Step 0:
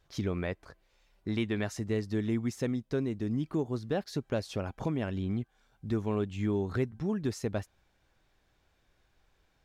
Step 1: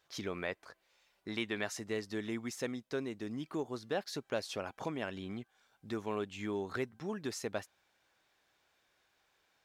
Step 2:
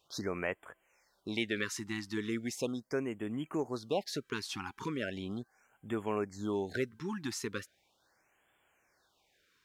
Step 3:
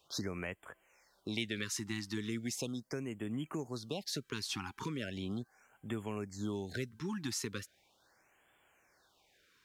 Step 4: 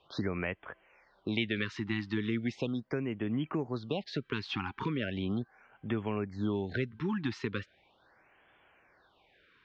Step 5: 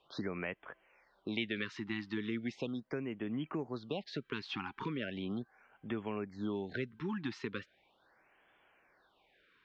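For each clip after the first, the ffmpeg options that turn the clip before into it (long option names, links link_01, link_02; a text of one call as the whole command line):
ffmpeg -i in.wav -af "highpass=frequency=740:poles=1,volume=1.5dB" out.wav
ffmpeg -i in.wav -af "afftfilt=real='re*(1-between(b*sr/1024,530*pow(5000/530,0.5+0.5*sin(2*PI*0.38*pts/sr))/1.41,530*pow(5000/530,0.5+0.5*sin(2*PI*0.38*pts/sr))*1.41))':imag='im*(1-between(b*sr/1024,530*pow(5000/530,0.5+0.5*sin(2*PI*0.38*pts/sr))/1.41,530*pow(5000/530,0.5+0.5*sin(2*PI*0.38*pts/sr))*1.41))':win_size=1024:overlap=0.75,volume=3dB" out.wav
ffmpeg -i in.wav -filter_complex "[0:a]acrossover=split=200|3000[link_01][link_02][link_03];[link_02]acompressor=threshold=-43dB:ratio=6[link_04];[link_01][link_04][link_03]amix=inputs=3:normalize=0,volume=2.5dB" out.wav
ffmpeg -i in.wav -af "lowpass=frequency=3300:width=0.5412,lowpass=frequency=3300:width=1.3066,volume=6dB" out.wav
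ffmpeg -i in.wav -af "equalizer=frequency=87:width_type=o:width=0.99:gain=-9.5,volume=-4dB" out.wav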